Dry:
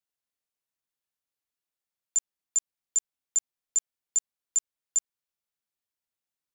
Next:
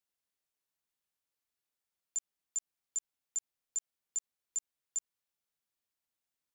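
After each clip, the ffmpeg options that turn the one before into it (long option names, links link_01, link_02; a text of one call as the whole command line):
ffmpeg -i in.wav -af "alimiter=level_in=4.5dB:limit=-24dB:level=0:latency=1,volume=-4.5dB" out.wav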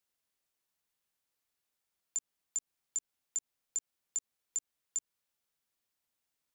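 ffmpeg -i in.wav -filter_complex "[0:a]acrossover=split=440[link_01][link_02];[link_02]acompressor=threshold=-36dB:ratio=6[link_03];[link_01][link_03]amix=inputs=2:normalize=0,volume=4dB" out.wav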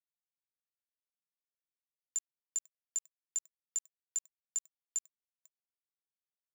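ffmpeg -i in.wav -af "aecho=1:1:496:0.0708,acrusher=bits=7:mix=0:aa=0.5" out.wav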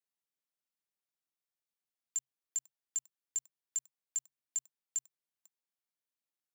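ffmpeg -i in.wav -af "afreqshift=130" out.wav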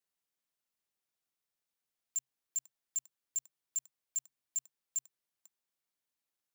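ffmpeg -i in.wav -af "volume=33dB,asoftclip=hard,volume=-33dB,volume=3dB" out.wav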